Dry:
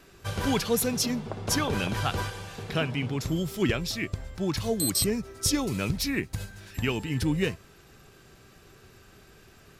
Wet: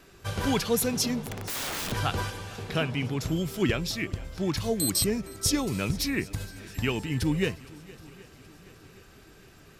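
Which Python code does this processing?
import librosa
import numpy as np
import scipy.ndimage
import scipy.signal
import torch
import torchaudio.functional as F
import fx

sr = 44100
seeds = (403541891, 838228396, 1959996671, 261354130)

y = fx.echo_swing(x, sr, ms=773, ratio=1.5, feedback_pct=47, wet_db=-21.5)
y = fx.overflow_wrap(y, sr, gain_db=28.0, at=(1.25, 1.92))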